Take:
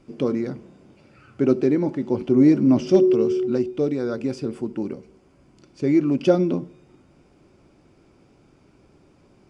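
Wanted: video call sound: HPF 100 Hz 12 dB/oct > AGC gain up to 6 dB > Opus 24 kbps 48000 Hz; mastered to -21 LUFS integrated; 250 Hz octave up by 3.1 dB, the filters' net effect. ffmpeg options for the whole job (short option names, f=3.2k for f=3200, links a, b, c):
-af "highpass=100,equalizer=f=250:t=o:g=4,dynaudnorm=m=6dB,volume=-2.5dB" -ar 48000 -c:a libopus -b:a 24k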